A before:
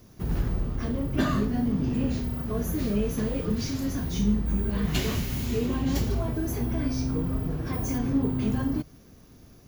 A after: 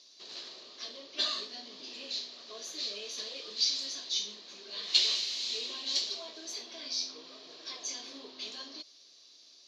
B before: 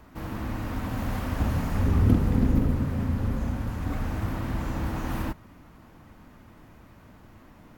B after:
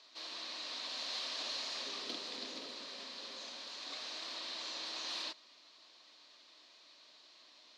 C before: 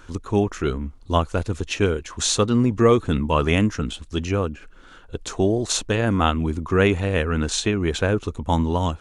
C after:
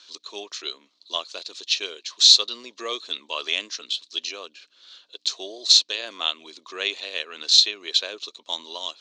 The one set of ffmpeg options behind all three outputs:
-af "aeval=exprs='val(0)+0.00447*(sin(2*PI*60*n/s)+sin(2*PI*2*60*n/s)/2+sin(2*PI*3*60*n/s)/3+sin(2*PI*4*60*n/s)/4+sin(2*PI*5*60*n/s)/5)':c=same,aexciter=amount=11.1:drive=5.5:freq=3500,highpass=f=470:w=0.5412,highpass=f=470:w=1.3066,equalizer=f=480:t=q:w=4:g=-7,equalizer=f=820:t=q:w=4:g=-10,equalizer=f=1400:t=q:w=4:g=-7,equalizer=f=2400:t=q:w=4:g=7,equalizer=f=4100:t=q:w=4:g=7,lowpass=f=4500:w=0.5412,lowpass=f=4500:w=1.3066,volume=0.422"

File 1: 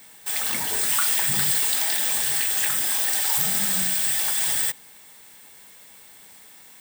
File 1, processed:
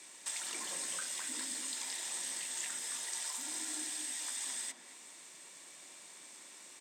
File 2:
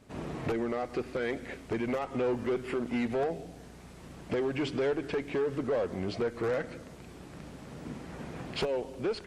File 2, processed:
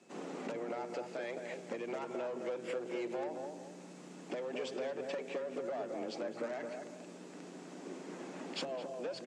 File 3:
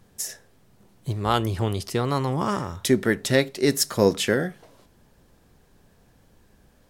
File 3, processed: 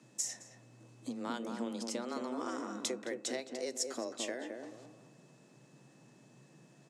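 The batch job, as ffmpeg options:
-filter_complex "[0:a]acompressor=threshold=0.0251:ratio=6,lowpass=f=7200:t=q:w=2.4,afreqshift=120,aeval=exprs='val(0)+0.000398*sin(2*PI*2600*n/s)':c=same,asplit=2[s0][s1];[s1]adelay=216,lowpass=f=920:p=1,volume=0.708,asplit=2[s2][s3];[s3]adelay=216,lowpass=f=920:p=1,volume=0.37,asplit=2[s4][s5];[s5]adelay=216,lowpass=f=920:p=1,volume=0.37,asplit=2[s6][s7];[s7]adelay=216,lowpass=f=920:p=1,volume=0.37,asplit=2[s8][s9];[s9]adelay=216,lowpass=f=920:p=1,volume=0.37[s10];[s2][s4][s6][s8][s10]amix=inputs=5:normalize=0[s11];[s0][s11]amix=inputs=2:normalize=0,volume=0.531"

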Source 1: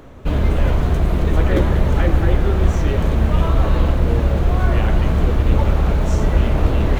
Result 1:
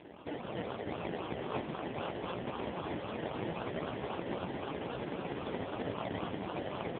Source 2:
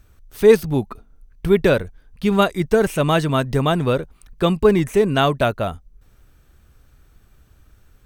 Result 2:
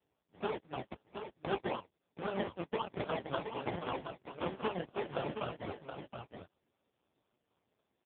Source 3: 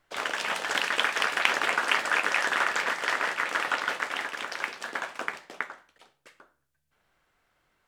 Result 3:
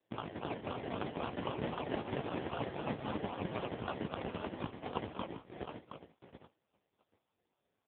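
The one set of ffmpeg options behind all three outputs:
-filter_complex "[0:a]aeval=exprs='if(lt(val(0),0),0.708*val(0),val(0))':c=same,bandpass=f=700:t=q:w=1:csg=0,asoftclip=type=tanh:threshold=0.224,acompressor=threshold=0.01:ratio=5,crystalizer=i=4:c=0,aeval=exprs='0.0708*(cos(1*acos(clip(val(0)/0.0708,-1,1)))-cos(1*PI/2))+0.000562*(cos(2*acos(clip(val(0)/0.0708,-1,1)))-cos(2*PI/2))+0.00562*(cos(6*acos(clip(val(0)/0.0708,-1,1)))-cos(6*PI/2))+0.00891*(cos(7*acos(clip(val(0)/0.0708,-1,1)))-cos(7*PI/2))+0.02*(cos(8*acos(clip(val(0)/0.0708,-1,1)))-cos(8*PI/2))':c=same,flanger=delay=16.5:depth=7:speed=0.82,dynaudnorm=f=330:g=3:m=1.41,acrusher=samples=29:mix=1:aa=0.000001:lfo=1:lforange=17.4:lforate=3.8,asplit=2[s0][s1];[s1]aecho=0:1:721:0.398[s2];[s0][s2]amix=inputs=2:normalize=0,volume=2.11" -ar 8000 -c:a libopencore_amrnb -b:a 4750

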